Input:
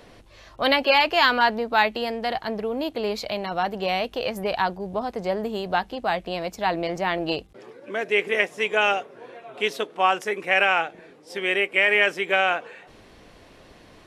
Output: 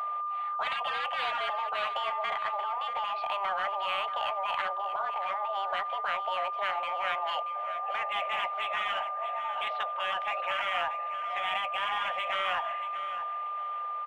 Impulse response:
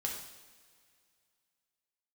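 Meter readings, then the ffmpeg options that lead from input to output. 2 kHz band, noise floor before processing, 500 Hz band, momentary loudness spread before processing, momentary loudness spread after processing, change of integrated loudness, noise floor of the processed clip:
−11.0 dB, −51 dBFS, −13.0 dB, 11 LU, 3 LU, −8.0 dB, −35 dBFS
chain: -filter_complex "[0:a]afftfilt=real='re*lt(hypot(re,im),0.2)':imag='im*lt(hypot(re,im),0.2)':win_size=1024:overlap=0.75,highpass=frequency=430:width_type=q:width=0.5412,highpass=frequency=430:width_type=q:width=1.307,lowpass=frequency=3100:width_type=q:width=0.5176,lowpass=frequency=3100:width_type=q:width=0.7071,lowpass=frequency=3100:width_type=q:width=1.932,afreqshift=200,asplit=2[link_01][link_02];[link_02]volume=34dB,asoftclip=hard,volume=-34dB,volume=-9.5dB[link_03];[link_01][link_03]amix=inputs=2:normalize=0,aeval=exprs='val(0)+0.0316*sin(2*PI*1200*n/s)':channel_layout=same,tiltshelf=frequency=1100:gain=6,asplit=2[link_04][link_05];[link_05]aecho=0:1:632|1264|1896:0.251|0.0603|0.0145[link_06];[link_04][link_06]amix=inputs=2:normalize=0"

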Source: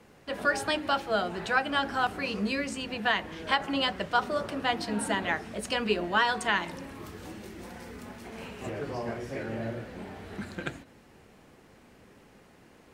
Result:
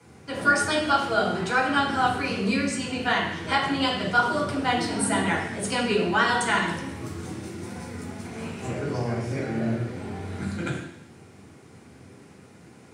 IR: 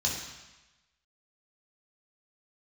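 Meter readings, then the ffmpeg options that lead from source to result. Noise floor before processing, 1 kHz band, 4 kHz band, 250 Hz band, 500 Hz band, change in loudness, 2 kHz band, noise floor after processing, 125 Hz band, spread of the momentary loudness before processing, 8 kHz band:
−57 dBFS, +5.0 dB, +3.0 dB, +7.0 dB, +4.0 dB, +4.5 dB, +4.5 dB, −50 dBFS, +10.0 dB, 17 LU, +9.0 dB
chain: -filter_complex "[1:a]atrim=start_sample=2205,asetrate=61740,aresample=44100[link_01];[0:a][link_01]afir=irnorm=-1:irlink=0"

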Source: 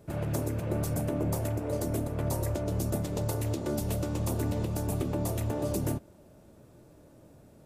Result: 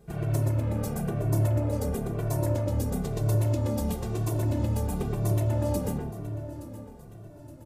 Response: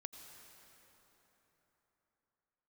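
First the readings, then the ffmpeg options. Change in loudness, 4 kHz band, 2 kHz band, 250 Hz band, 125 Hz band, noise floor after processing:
+3.0 dB, −1.0 dB, 0.0 dB, +1.5 dB, +5.5 dB, −47 dBFS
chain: -filter_complex "[0:a]lowshelf=frequency=75:gain=8,aecho=1:1:870|1740|2610|3480:0.158|0.0713|0.0321|0.0144,asplit=2[link_01][link_02];[1:a]atrim=start_sample=2205,lowpass=2100,adelay=117[link_03];[link_02][link_03]afir=irnorm=-1:irlink=0,volume=3.5dB[link_04];[link_01][link_04]amix=inputs=2:normalize=0,asplit=2[link_05][link_06];[link_06]adelay=2.1,afreqshift=-1[link_07];[link_05][link_07]amix=inputs=2:normalize=1,volume=1.5dB"

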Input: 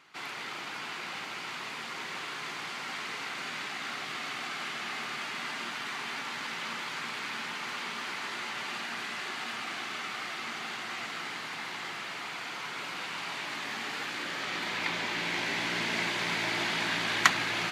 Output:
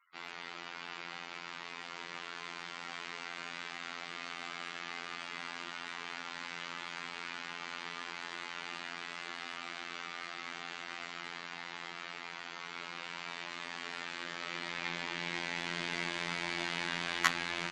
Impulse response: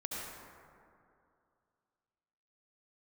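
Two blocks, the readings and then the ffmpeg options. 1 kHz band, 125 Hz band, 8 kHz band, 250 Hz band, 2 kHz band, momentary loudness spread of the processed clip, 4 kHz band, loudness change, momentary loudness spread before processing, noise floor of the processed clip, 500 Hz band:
−6.5 dB, −5.5 dB, −7.5 dB, −6.0 dB, −6.5 dB, 8 LU, −6.5 dB, −6.5 dB, 8 LU, −47 dBFS, −6.0 dB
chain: -af "afftfilt=real='re*gte(hypot(re,im),0.00316)':imag='im*gte(hypot(re,im),0.00316)':win_size=1024:overlap=0.75,afftfilt=real='hypot(re,im)*cos(PI*b)':imag='0':win_size=2048:overlap=0.75,volume=-3dB"

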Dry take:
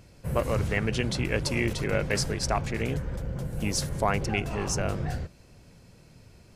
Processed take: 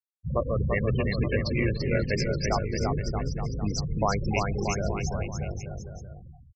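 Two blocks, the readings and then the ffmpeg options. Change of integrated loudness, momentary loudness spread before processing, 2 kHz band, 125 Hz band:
+0.5 dB, 7 LU, −1.5 dB, +2.0 dB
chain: -af "afftfilt=real='re*gte(hypot(re,im),0.0891)':imag='im*gte(hypot(re,im),0.0891)':win_size=1024:overlap=0.75,aecho=1:1:340|629|874.6|1083|1261:0.631|0.398|0.251|0.158|0.1"

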